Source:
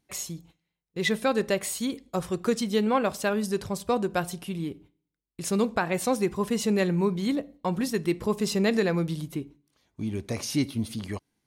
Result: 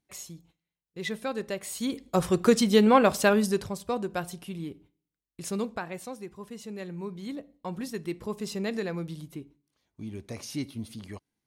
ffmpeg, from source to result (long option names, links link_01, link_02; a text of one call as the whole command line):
ffmpeg -i in.wav -af "volume=12.5dB,afade=type=in:start_time=1.65:duration=0.59:silence=0.237137,afade=type=out:start_time=3.3:duration=0.46:silence=0.334965,afade=type=out:start_time=5.42:duration=0.72:silence=0.298538,afade=type=in:start_time=6.73:duration=1.03:silence=0.421697" out.wav